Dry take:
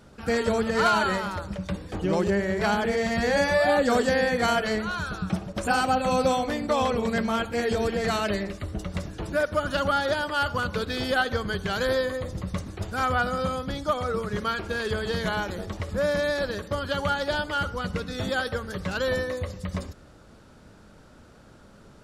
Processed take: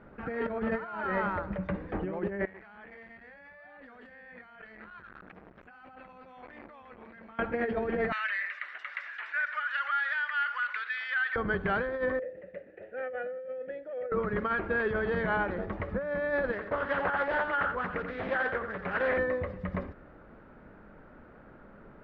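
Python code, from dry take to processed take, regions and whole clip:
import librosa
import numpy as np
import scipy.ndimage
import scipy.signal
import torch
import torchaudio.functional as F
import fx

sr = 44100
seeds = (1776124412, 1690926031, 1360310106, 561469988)

y = fx.chain(x, sr, fx.tone_stack(knobs='5-5-5'),
    fx.over_compress(threshold_db=-48.0, ratio=-1.0),
    fx.transformer_sat(knee_hz=1400.0), at=(2.45, 7.39))
y = fx.chain(y, sr, fx.cheby1_highpass(hz=1700.0, order=3),
    fx.env_flatten(amount_pct=50), at=(8.12, 11.36))
y = fx.chain(y, sr, fx.vowel_filter(vowel='e'),
    fx.over_compress(threshold_db=-37.0, ratio=-1.0), at=(12.19, 14.12))
y = fx.chain(y, sr, fx.low_shelf(hz=400.0, db=-8.5),
    fx.echo_single(ms=86, db=-8.0),
    fx.doppler_dist(depth_ms=0.54), at=(16.52, 19.18))
y = fx.over_compress(y, sr, threshold_db=-27.0, ratio=-0.5)
y = scipy.signal.sosfilt(scipy.signal.cheby1(3, 1.0, 2000.0, 'lowpass', fs=sr, output='sos'), y)
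y = fx.peak_eq(y, sr, hz=90.0, db=-8.5, octaves=1.6)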